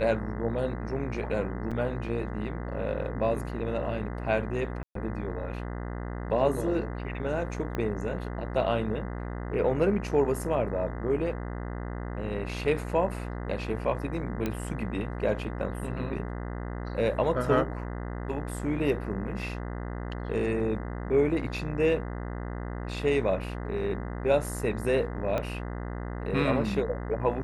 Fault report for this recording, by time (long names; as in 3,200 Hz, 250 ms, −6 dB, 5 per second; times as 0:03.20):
mains buzz 60 Hz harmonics 34 −35 dBFS
0:01.71–0:01.72: drop-out 5.7 ms
0:04.83–0:04.95: drop-out 123 ms
0:07.75: click −19 dBFS
0:14.46: click −16 dBFS
0:25.38: click −17 dBFS